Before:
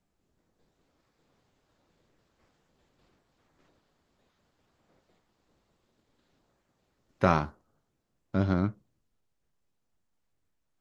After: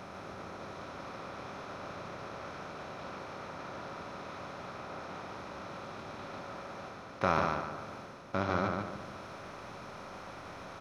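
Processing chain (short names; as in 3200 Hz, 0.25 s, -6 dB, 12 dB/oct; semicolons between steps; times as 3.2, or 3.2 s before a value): per-bin compression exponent 0.4; low shelf 480 Hz -8.5 dB; reverse; upward compressor, threshold -34 dBFS; reverse; feedback echo 0.147 s, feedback 35%, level -4 dB; gain -4.5 dB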